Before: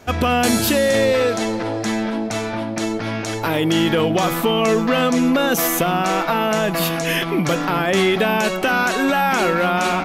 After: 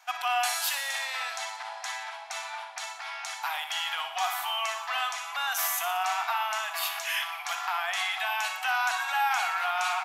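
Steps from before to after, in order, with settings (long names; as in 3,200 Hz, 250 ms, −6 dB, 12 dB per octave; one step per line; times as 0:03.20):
Chebyshev high-pass filter 730 Hz, order 6
repeating echo 60 ms, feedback 58%, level −10 dB
level −7.5 dB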